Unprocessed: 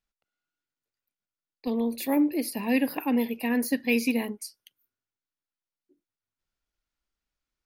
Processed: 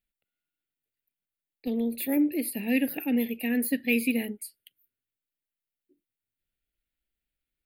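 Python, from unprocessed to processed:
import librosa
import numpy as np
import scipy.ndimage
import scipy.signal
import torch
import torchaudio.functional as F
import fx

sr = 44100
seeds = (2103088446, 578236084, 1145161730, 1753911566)

y = fx.high_shelf(x, sr, hz=7100.0, db=6.0)
y = fx.fixed_phaser(y, sr, hz=2500.0, stages=4)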